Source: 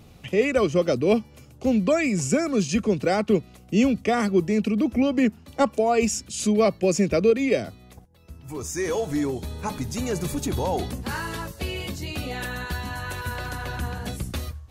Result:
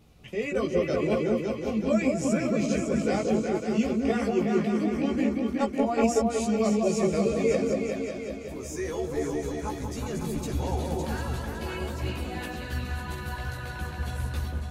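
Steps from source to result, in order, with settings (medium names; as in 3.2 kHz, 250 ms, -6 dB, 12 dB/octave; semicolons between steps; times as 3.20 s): delay with an opening low-pass 186 ms, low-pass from 750 Hz, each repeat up 2 oct, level 0 dB; chorus voices 6, 0.69 Hz, delay 16 ms, depth 3 ms; trim -5 dB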